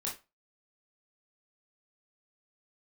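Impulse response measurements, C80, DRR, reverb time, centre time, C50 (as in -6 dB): 17.0 dB, -4.5 dB, 0.25 s, 26 ms, 8.5 dB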